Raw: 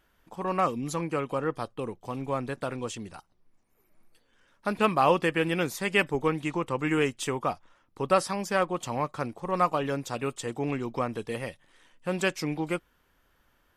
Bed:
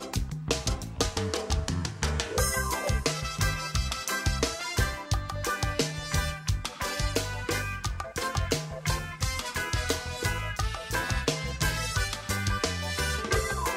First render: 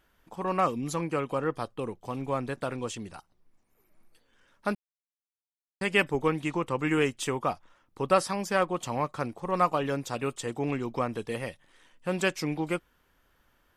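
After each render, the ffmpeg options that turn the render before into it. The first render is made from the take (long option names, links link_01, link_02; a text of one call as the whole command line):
ffmpeg -i in.wav -filter_complex "[0:a]asplit=3[link_01][link_02][link_03];[link_01]atrim=end=4.75,asetpts=PTS-STARTPTS,afade=type=out:start_time=4.746:duration=0.004:curve=hsin[link_04];[link_02]atrim=start=4.75:end=5.81,asetpts=PTS-STARTPTS,volume=0[link_05];[link_03]atrim=start=5.81,asetpts=PTS-STARTPTS,afade=type=in:duration=0.004:curve=hsin[link_06];[link_04][link_05][link_06]concat=n=3:v=0:a=1" out.wav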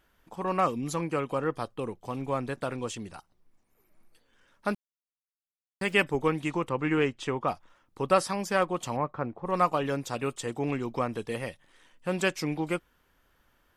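ffmpeg -i in.wav -filter_complex "[0:a]asettb=1/sr,asplit=3[link_01][link_02][link_03];[link_01]atrim=end=4.734[link_04];[link_02]atrim=start=4.73:end=5.93,asetpts=PTS-STARTPTS,afade=type=in:duration=0.004:curve=qsin,afade=type=out:start_time=1.196:duration=0.004:curve=qsin,aeval=exprs='val(0)*gte(abs(val(0)),0.00376)':channel_layout=same[link_05];[link_03]atrim=start=5.926[link_06];[link_04][link_05]acrossfade=duration=0.004:curve1=hsin:curve2=qsin[link_07];[link_07][link_06]acrossfade=duration=0.004:curve1=qsin:curve2=hsin,asettb=1/sr,asplit=3[link_08][link_09][link_10];[link_08]atrim=end=6.694[link_11];[link_09]atrim=start=6.69:end=7.48,asetpts=PTS-STARTPTS,afade=type=in:duration=0.004:curve=qsin,afade=type=out:start_time=0.786:duration=0.004:curve=qsin,adynamicsmooth=sensitivity=0.5:basefreq=4400[link_12];[link_10]atrim=start=7.476[link_13];[link_11][link_12]acrossfade=duration=0.004:curve1=hsin:curve2=qsin[link_14];[link_14][link_13]acrossfade=duration=0.004:curve1=qsin:curve2=hsin,asplit=3[link_15][link_16][link_17];[link_15]afade=type=out:start_time=8.96:duration=0.02[link_18];[link_16]lowpass=1600,afade=type=in:start_time=8.96:duration=0.02,afade=type=out:start_time=9.45:duration=0.02[link_19];[link_17]afade=type=in:start_time=9.45:duration=0.02[link_20];[link_18][link_19][link_20]amix=inputs=3:normalize=0" out.wav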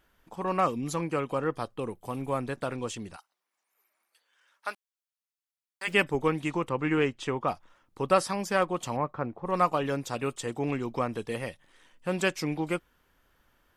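ffmpeg -i in.wav -filter_complex "[0:a]asettb=1/sr,asplit=3[link_01][link_02][link_03];[link_01]atrim=end=1.904[link_04];[link_02]atrim=start=1.9:end=2.44,asetpts=PTS-STARTPTS,afade=type=in:duration=0.004:curve=qsin,afade=type=out:start_time=0.536:duration=0.004:curve=qsin,highshelf=frequency=7900:width_type=q:width=1.5:gain=7[link_05];[link_03]atrim=start=2.436[link_06];[link_04][link_05]acrossfade=duration=0.004:curve1=hsin:curve2=qsin[link_07];[link_07][link_06]acrossfade=duration=0.004:curve1=qsin:curve2=hsin,asplit=3[link_08][link_09][link_10];[link_08]afade=type=out:start_time=3.15:duration=0.02[link_11];[link_09]highpass=940,afade=type=in:start_time=3.15:duration=0.02,afade=type=out:start_time=5.87:duration=0.02[link_12];[link_10]afade=type=in:start_time=5.87:duration=0.02[link_13];[link_11][link_12][link_13]amix=inputs=3:normalize=0" out.wav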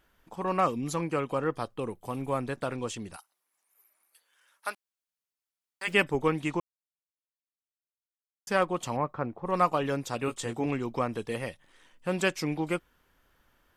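ffmpeg -i in.wav -filter_complex "[0:a]asettb=1/sr,asplit=3[link_01][link_02][link_03];[link_01]atrim=end=3.124[link_04];[link_02]atrim=start=3.12:end=4.7,asetpts=PTS-STARTPTS,afade=type=in:duration=0.004:curve=qsin,afade=type=out:start_time=1.576:duration=0.004:curve=qsin,equalizer=frequency=11000:width=1.3:gain=13[link_05];[link_03]atrim=start=4.696[link_06];[link_04][link_05]acrossfade=duration=0.004:curve1=hsin:curve2=qsin[link_07];[link_07][link_06]acrossfade=duration=0.004:curve1=qsin:curve2=hsin,asettb=1/sr,asplit=3[link_08][link_09][link_10];[link_08]atrim=end=10.264[link_11];[link_09]atrim=start=10.26:end=10.66,asetpts=PTS-STARTPTS,afade=type=in:duration=0.004:curve=qsin,afade=type=out:start_time=0.396:duration=0.004:curve=qsin,asplit=2[link_12][link_13];[link_13]adelay=18,volume=-6dB[link_14];[link_12][link_14]amix=inputs=2:normalize=0,atrim=end_sample=17640[link_15];[link_10]atrim=start=10.656[link_16];[link_11][link_15]acrossfade=duration=0.004:curve1=hsin:curve2=qsin[link_17];[link_17][link_16]acrossfade=duration=0.004:curve1=qsin:curve2=hsin,asplit=3[link_18][link_19][link_20];[link_18]atrim=end=6.6,asetpts=PTS-STARTPTS,afade=type=out:start_time=6.596:duration=0.004:curve=hsin[link_21];[link_19]atrim=start=6.6:end=8.47,asetpts=PTS-STARTPTS,volume=0[link_22];[link_20]atrim=start=8.47,asetpts=PTS-STARTPTS,afade=type=in:duration=0.004:curve=hsin[link_23];[link_21][link_22][link_23]concat=n=3:v=0:a=1" out.wav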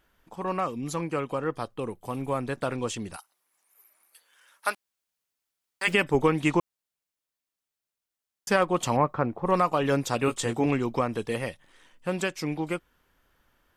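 ffmpeg -i in.wav -af "alimiter=limit=-18dB:level=0:latency=1:release=200,dynaudnorm=framelen=290:gausssize=21:maxgain=7dB" out.wav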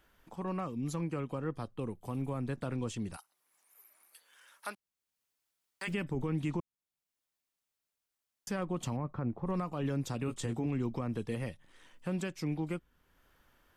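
ffmpeg -i in.wav -filter_complex "[0:a]acrossover=split=270[link_01][link_02];[link_02]acompressor=threshold=-58dB:ratio=1.5[link_03];[link_01][link_03]amix=inputs=2:normalize=0,alimiter=level_in=1.5dB:limit=-24dB:level=0:latency=1:release=55,volume=-1.5dB" out.wav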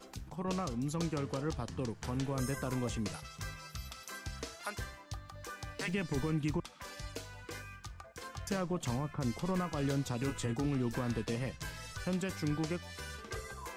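ffmpeg -i in.wav -i bed.wav -filter_complex "[1:a]volume=-15.5dB[link_01];[0:a][link_01]amix=inputs=2:normalize=0" out.wav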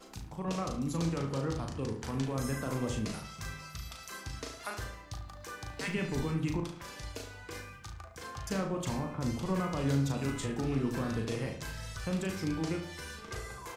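ffmpeg -i in.wav -filter_complex "[0:a]asplit=2[link_01][link_02];[link_02]adelay=37,volume=-5dB[link_03];[link_01][link_03]amix=inputs=2:normalize=0,asplit=2[link_04][link_05];[link_05]adelay=72,lowpass=frequency=2100:poles=1,volume=-7dB,asplit=2[link_06][link_07];[link_07]adelay=72,lowpass=frequency=2100:poles=1,volume=0.46,asplit=2[link_08][link_09];[link_09]adelay=72,lowpass=frequency=2100:poles=1,volume=0.46,asplit=2[link_10][link_11];[link_11]adelay=72,lowpass=frequency=2100:poles=1,volume=0.46,asplit=2[link_12][link_13];[link_13]adelay=72,lowpass=frequency=2100:poles=1,volume=0.46[link_14];[link_04][link_06][link_08][link_10][link_12][link_14]amix=inputs=6:normalize=0" out.wav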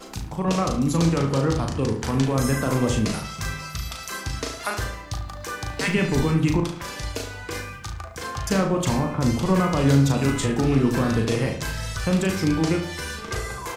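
ffmpeg -i in.wav -af "volume=12dB" out.wav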